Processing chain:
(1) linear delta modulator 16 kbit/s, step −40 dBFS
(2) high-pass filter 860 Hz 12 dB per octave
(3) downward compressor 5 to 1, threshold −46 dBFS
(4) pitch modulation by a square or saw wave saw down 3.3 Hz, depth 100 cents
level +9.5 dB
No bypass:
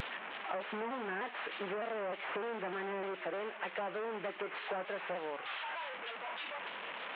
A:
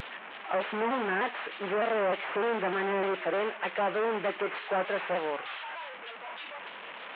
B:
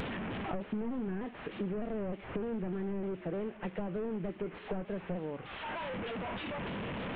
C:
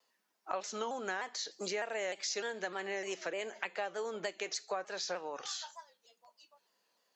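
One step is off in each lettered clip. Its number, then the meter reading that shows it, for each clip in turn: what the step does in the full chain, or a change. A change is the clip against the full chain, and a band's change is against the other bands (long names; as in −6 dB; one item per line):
3, average gain reduction 6.0 dB
2, 125 Hz band +18.5 dB
1, 4 kHz band +6.0 dB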